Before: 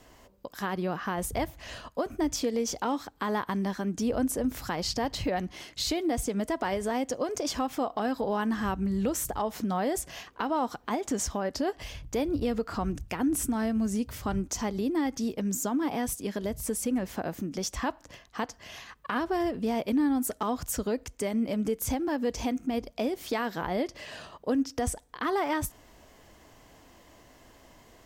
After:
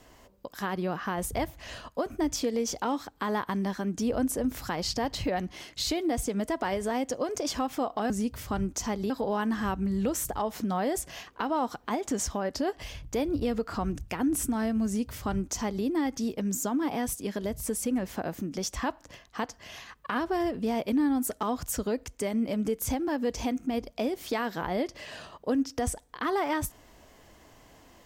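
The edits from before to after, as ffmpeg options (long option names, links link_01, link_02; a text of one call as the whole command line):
ffmpeg -i in.wav -filter_complex "[0:a]asplit=3[link_01][link_02][link_03];[link_01]atrim=end=8.102[link_04];[link_02]atrim=start=13.848:end=14.852[link_05];[link_03]atrim=start=8.098[link_06];[link_04][link_05]acrossfade=duration=0.004:curve1=hsin:curve2=hsin[link_07];[link_07][link_06]acrossfade=duration=0.004:curve1=hsin:curve2=hsin" out.wav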